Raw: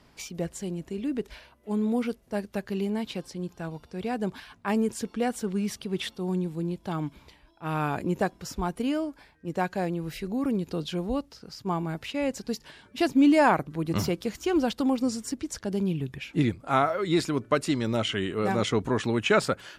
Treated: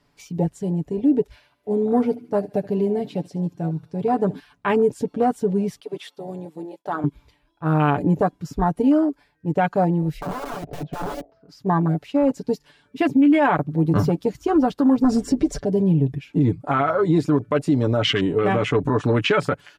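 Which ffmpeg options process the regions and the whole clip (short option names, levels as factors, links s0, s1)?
-filter_complex "[0:a]asettb=1/sr,asplit=3[s0][s1][s2];[s0]atrim=end=1.324[s3];[s1]atrim=start=1.32:end=4.4,asetpts=PTS-STARTPTS,afade=t=in:d=0.004:c=qsin,afade=t=out:st=3.076:d=0.004:c=qsin,highpass=64,aecho=1:1:74|148|222|296|370:0.141|0.0749|0.0397|0.021|0.0111,atrim=end_sample=135828[s4];[s2]atrim=start=4.396[s5];[s3][s4]acrossfade=d=0.004:c1=hsin:c2=qsin[s6];[s6][s5]acrossfade=d=0.004:c1=qsin:c2=hsin,asettb=1/sr,asplit=3[s7][s8][s9];[s7]atrim=end=5.804[s10];[s8]atrim=start=5.8:end=7.04,asetpts=PTS-STARTPTS,afade=t=in:d=0.004:c=qsin,afade=t=out:st=1.236:d=0.004:c=qsin,highpass=480,agate=range=0.0224:threshold=0.002:ratio=3:release=100:detection=peak[s11];[s9]atrim=start=7.036[s12];[s10][s11]acrossfade=d=0.004:c1=hsin:c2=qsin[s13];[s13][s12]acrossfade=d=0.004:c1=qsin:c2=hsin,asettb=1/sr,asplit=3[s14][s15][s16];[s14]atrim=end=10.214[s17];[s15]atrim=start=10.21:end=11.49,asetpts=PTS-STARTPTS,afade=t=in:d=0.004:c=qsin,afade=t=out:st=1.276:d=0.004:c=qsin,lowpass=1300,aeval=exprs='(mod(35.5*val(0)+1,2)-1)/35.5':c=same,aeval=exprs='val(0)+0.00562*sin(2*PI*660*n/s)':c=same[s18];[s16]atrim=start=11.486[s19];[s17][s18]acrossfade=d=0.004:c1=hsin:c2=qsin[s20];[s20][s19]acrossfade=d=0.004:c1=qsin:c2=hsin,asettb=1/sr,asplit=3[s21][s22][s23];[s21]atrim=end=15.044[s24];[s22]atrim=start=15.04:end=15.64,asetpts=PTS-STARTPTS,afade=t=in:d=0.004:c=qsin,afade=t=out:st=0.596:d=0.004:c=qsin,highshelf=f=8600:g=-10,aecho=1:1:5.1:0.62,atrim=end_sample=26460,aeval=exprs='0.141*sin(PI/2*1.78*val(0)/0.141)':c=same[s25];[s23]atrim=start=15.636[s26];[s24][s25]acrossfade=d=0.004:c1=hsin:c2=qsin[s27];[s27][s26]acrossfade=d=0.004:c1=qsin:c2=hsin,afwtdn=0.0224,aecho=1:1:6.9:0.62,alimiter=level_in=7.94:limit=0.891:release=50:level=0:latency=1,volume=0.355"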